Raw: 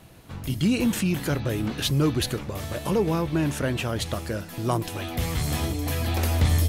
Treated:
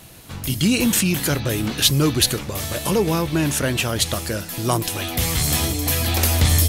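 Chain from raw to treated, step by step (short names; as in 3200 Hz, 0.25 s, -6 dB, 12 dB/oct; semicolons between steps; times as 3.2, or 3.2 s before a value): high shelf 2900 Hz +11 dB; gain +3.5 dB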